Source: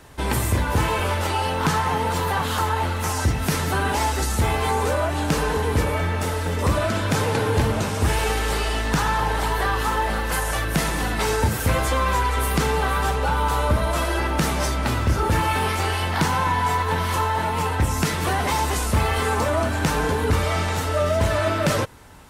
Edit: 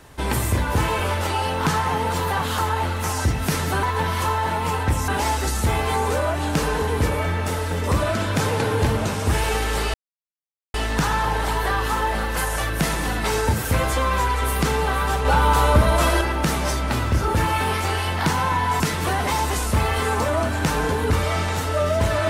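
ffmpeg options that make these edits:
ffmpeg -i in.wav -filter_complex "[0:a]asplit=7[link_01][link_02][link_03][link_04][link_05][link_06][link_07];[link_01]atrim=end=3.832[link_08];[link_02]atrim=start=16.748:end=18.002[link_09];[link_03]atrim=start=3.828:end=8.69,asetpts=PTS-STARTPTS,afade=type=out:start_time=4.858:duration=0.004:curve=hsin,apad=pad_dur=0.8[link_10];[link_04]atrim=start=8.69:end=13.202,asetpts=PTS-STARTPTS,afade=type=in:duration=0.004:curve=hsin[link_11];[link_05]atrim=start=13.198:end=14.162,asetpts=PTS-STARTPTS,volume=4.5dB[link_12];[link_06]atrim=start=14.158:end=16.752[link_13];[link_07]atrim=start=17.998[link_14];[link_08][link_09]acrossfade=duration=0.004:curve1=hsin:curve2=hsin[link_15];[link_10][link_11]concat=n=2:v=0:a=1[link_16];[link_15][link_16]acrossfade=duration=0.004:curve1=hsin:curve2=hsin[link_17];[link_17][link_12]acrossfade=duration=0.004:curve1=hsin:curve2=hsin[link_18];[link_18][link_13]acrossfade=duration=0.004:curve1=hsin:curve2=hsin[link_19];[link_19][link_14]acrossfade=duration=0.004:curve1=hsin:curve2=hsin" out.wav

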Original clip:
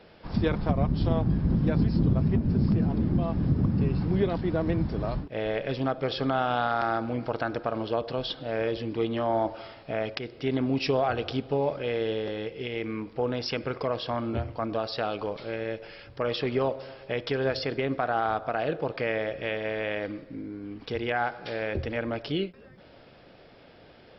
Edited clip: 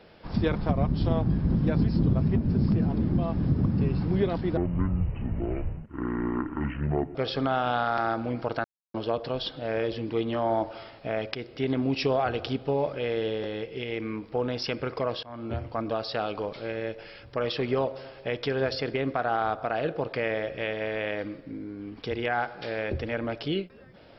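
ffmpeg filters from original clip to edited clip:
ffmpeg -i in.wav -filter_complex "[0:a]asplit=6[link_01][link_02][link_03][link_04][link_05][link_06];[link_01]atrim=end=4.574[link_07];[link_02]atrim=start=4.57:end=5.99,asetpts=PTS-STARTPTS,asetrate=24255,aresample=44100,atrim=end_sample=113858,asetpts=PTS-STARTPTS[link_08];[link_03]atrim=start=5.986:end=7.48,asetpts=PTS-STARTPTS,afade=type=out:start_time=1.49:duration=0.004:curve=hsin[link_09];[link_04]atrim=start=7.48:end=7.78,asetpts=PTS-STARTPTS,volume=0[link_10];[link_05]atrim=start=7.78:end=14.07,asetpts=PTS-STARTPTS,afade=type=in:duration=0.004:curve=hsin,afade=type=out:start_time=6.286:duration=0.004:curve=hsin:silence=0.0707946[link_11];[link_06]atrim=start=14.07,asetpts=PTS-STARTPTS,afade=type=in:duration=0.4:silence=0.0707946[link_12];[link_07][link_08]acrossfade=duration=0.004:curve1=hsin:curve2=hsin[link_13];[link_09][link_10][link_11][link_12]concat=n=4:v=0:a=1[link_14];[link_13][link_14]acrossfade=duration=0.004:curve1=hsin:curve2=hsin" out.wav

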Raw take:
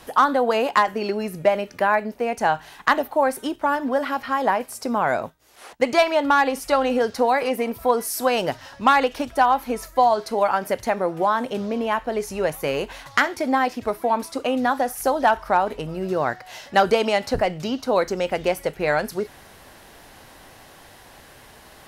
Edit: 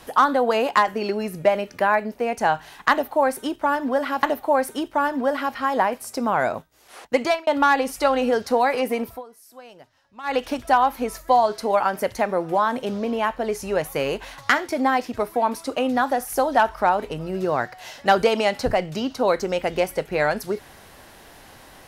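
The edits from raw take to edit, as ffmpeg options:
ffmpeg -i in.wav -filter_complex "[0:a]asplit=5[link_01][link_02][link_03][link_04][link_05];[link_01]atrim=end=4.232[link_06];[link_02]atrim=start=2.908:end=6.15,asetpts=PTS-STARTPTS,afade=type=out:start_time=2.992:duration=0.25[link_07];[link_03]atrim=start=6.15:end=7.9,asetpts=PTS-STARTPTS,afade=type=in:duration=0.004:curve=hsin,afade=type=out:start_time=1.59:duration=0.16:silence=0.0707946[link_08];[link_04]atrim=start=7.9:end=8.91,asetpts=PTS-STARTPTS,volume=-23dB[link_09];[link_05]atrim=start=8.91,asetpts=PTS-STARTPTS,afade=type=in:duration=0.16:silence=0.0707946[link_10];[link_07][link_08][link_09][link_10]concat=n=4:v=0:a=1[link_11];[link_06][link_11]acrossfade=duration=0.004:curve1=hsin:curve2=hsin" out.wav

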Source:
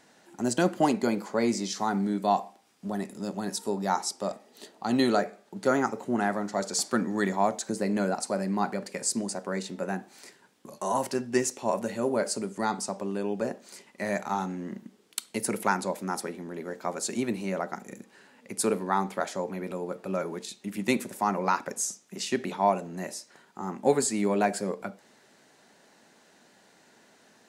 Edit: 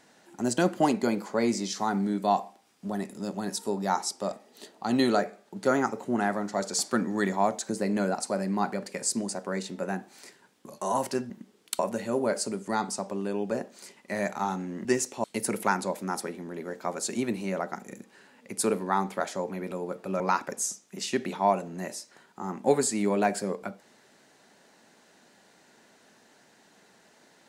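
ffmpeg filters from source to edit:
ffmpeg -i in.wav -filter_complex "[0:a]asplit=6[link_01][link_02][link_03][link_04][link_05][link_06];[link_01]atrim=end=11.302[link_07];[link_02]atrim=start=14.748:end=15.242[link_08];[link_03]atrim=start=11.688:end=14.752[link_09];[link_04]atrim=start=11.298:end=11.692[link_10];[link_05]atrim=start=15.238:end=20.202[link_11];[link_06]atrim=start=21.388[link_12];[link_07][link_08]acrossfade=duration=0.004:curve1=hsin:curve2=hsin[link_13];[link_13][link_09]acrossfade=duration=0.004:curve1=hsin:curve2=hsin[link_14];[link_14][link_10]acrossfade=duration=0.004:curve1=hsin:curve2=hsin[link_15];[link_15][link_11]acrossfade=duration=0.004:curve1=hsin:curve2=hsin[link_16];[link_16][link_12]acrossfade=duration=0.004:curve1=hsin:curve2=hsin" out.wav

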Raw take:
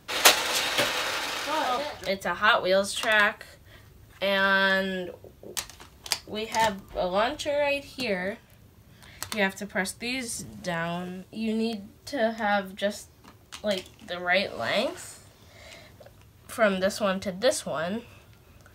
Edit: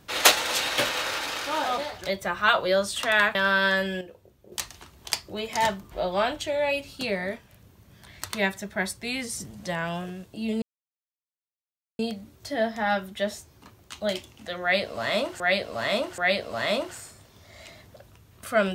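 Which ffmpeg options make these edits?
ffmpeg -i in.wav -filter_complex "[0:a]asplit=7[link_01][link_02][link_03][link_04][link_05][link_06][link_07];[link_01]atrim=end=3.352[link_08];[link_02]atrim=start=4.338:end=5.002[link_09];[link_03]atrim=start=4.998:end=5.512,asetpts=PTS-STARTPTS,volume=-8.5dB[link_10];[link_04]atrim=start=5.508:end=11.61,asetpts=PTS-STARTPTS,afade=type=out:start_time=6.098:duration=0.004:curve=hsin,apad=pad_dur=1.37[link_11];[link_05]atrim=start=11.61:end=15.022,asetpts=PTS-STARTPTS,afade=type=in:duration=0.004:curve=hsin[link_12];[link_06]atrim=start=14.238:end=15.022[link_13];[link_07]atrim=start=14.238[link_14];[link_08][link_09]acrossfade=duration=0.004:curve1=hsin:curve2=hsin[link_15];[link_15][link_10]acrossfade=duration=0.004:curve1=hsin:curve2=hsin[link_16];[link_11][link_12]concat=n=2:v=0:a=1[link_17];[link_16][link_17]acrossfade=duration=0.004:curve1=hsin:curve2=hsin[link_18];[link_18][link_13]acrossfade=duration=0.004:curve1=hsin:curve2=hsin[link_19];[link_19][link_14]acrossfade=duration=0.004:curve1=hsin:curve2=hsin" out.wav

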